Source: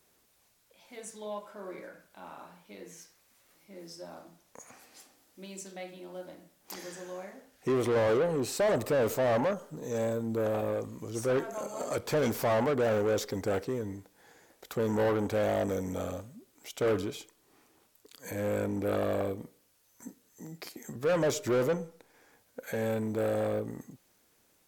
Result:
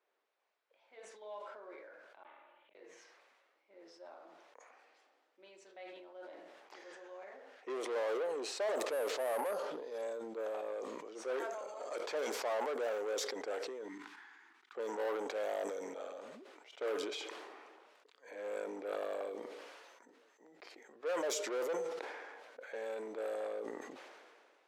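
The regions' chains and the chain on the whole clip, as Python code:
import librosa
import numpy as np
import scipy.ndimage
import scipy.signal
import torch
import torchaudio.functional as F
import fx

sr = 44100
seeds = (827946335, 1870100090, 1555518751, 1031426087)

y = fx.chain(x, sr, fx.lower_of_two(delay_ms=3.4),
    fx.high_shelf_res(hz=4300.0, db=-10.0, q=3.0),
    fx.gate_flip(shuts_db=-49.0, range_db=-33), at=(2.23, 2.75))
y = fx.chain(y, sr, fx.high_shelf(hz=4800.0, db=-5.0),
    fx.resample_bad(factor=4, down='none', up='hold'), at=(8.86, 10.02))
y = fx.chain(y, sr, fx.cheby1_bandstop(low_hz=280.0, high_hz=1100.0, order=2),
    fx.level_steps(step_db=11), at=(13.88, 14.75))
y = scipy.signal.sosfilt(scipy.signal.butter(4, 400.0, 'highpass', fs=sr, output='sos'), y)
y = fx.env_lowpass(y, sr, base_hz=2300.0, full_db=-24.5)
y = fx.sustainer(y, sr, db_per_s=29.0)
y = y * 10.0 ** (-8.5 / 20.0)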